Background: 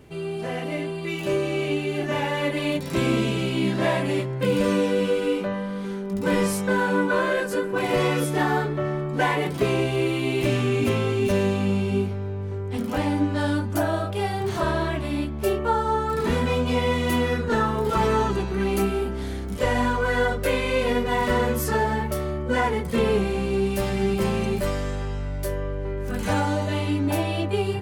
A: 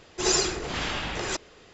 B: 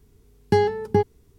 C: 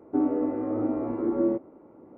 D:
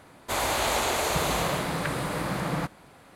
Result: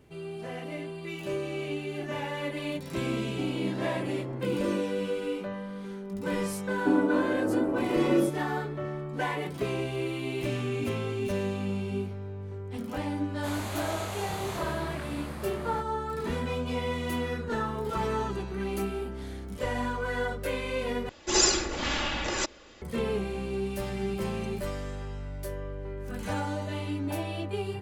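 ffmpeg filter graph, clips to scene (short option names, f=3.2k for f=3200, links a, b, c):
-filter_complex "[3:a]asplit=2[a][b];[0:a]volume=-8.5dB[c];[4:a]asplit=2[d][e];[e]adelay=24,volume=-2.5dB[f];[d][f]amix=inputs=2:normalize=0[g];[1:a]aecho=1:1:3.5:0.49[h];[c]asplit=2[i][j];[i]atrim=end=21.094[k];[h]atrim=end=1.73,asetpts=PTS-STARTPTS,volume=-0.5dB[l];[j]atrim=start=22.816[m];[a]atrim=end=2.17,asetpts=PTS-STARTPTS,volume=-10dB,afade=t=in:d=0.004:c=hsin,afade=t=out:st=2.166:d=0.004:c=hsin,adelay=3240[n];[b]atrim=end=2.17,asetpts=PTS-STARTPTS,afade=t=in:d=0.004:c=hsin,afade=t=out:st=2.166:d=0.004:c=hsin,adelay=6720[o];[g]atrim=end=3.15,asetpts=PTS-STARTPTS,volume=-13.5dB,afade=t=in:d=0.004:c=hsin,afade=t=out:st=3.146:d=0.004:c=hsin,adelay=13140[p];[k][l]acrossfade=d=0.004:c1=hsin:c2=hsin[q];[q][m]acrossfade=d=0.004:c1=hsin:c2=hsin[r];[r][n][o][p]amix=inputs=4:normalize=0"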